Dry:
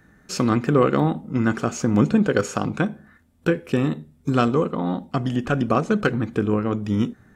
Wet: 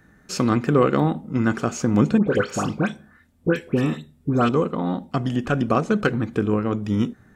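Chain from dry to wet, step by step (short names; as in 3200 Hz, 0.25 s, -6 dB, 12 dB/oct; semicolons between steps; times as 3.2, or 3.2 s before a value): 2.18–4.49 dispersion highs, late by 0.101 s, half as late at 2000 Hz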